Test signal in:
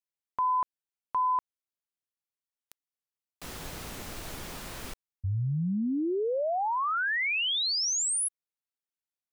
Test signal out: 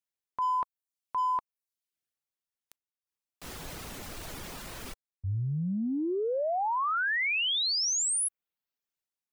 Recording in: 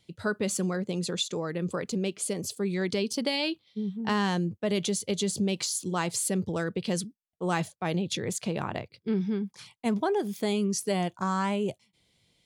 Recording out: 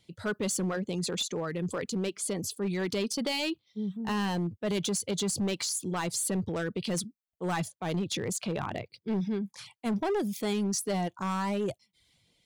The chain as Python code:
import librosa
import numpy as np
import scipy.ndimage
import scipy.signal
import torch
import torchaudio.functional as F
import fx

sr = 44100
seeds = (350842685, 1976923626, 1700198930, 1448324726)

y = fx.dereverb_blind(x, sr, rt60_s=0.55)
y = fx.transient(y, sr, attack_db=-3, sustain_db=4)
y = np.clip(y, -10.0 ** (-25.0 / 20.0), 10.0 ** (-25.0 / 20.0))